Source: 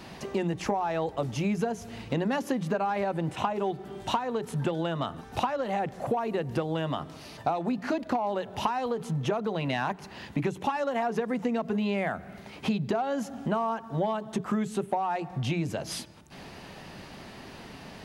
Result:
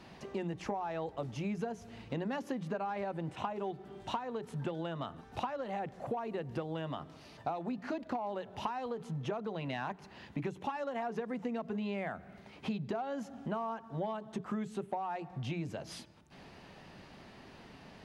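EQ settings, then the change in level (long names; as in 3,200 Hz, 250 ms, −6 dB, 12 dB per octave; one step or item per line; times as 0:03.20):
high-shelf EQ 8,400 Hz −11 dB
−8.5 dB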